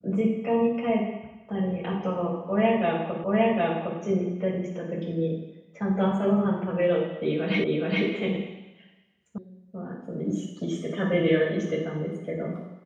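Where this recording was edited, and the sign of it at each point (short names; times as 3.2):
3.24 repeat of the last 0.76 s
7.64 repeat of the last 0.42 s
9.38 sound cut off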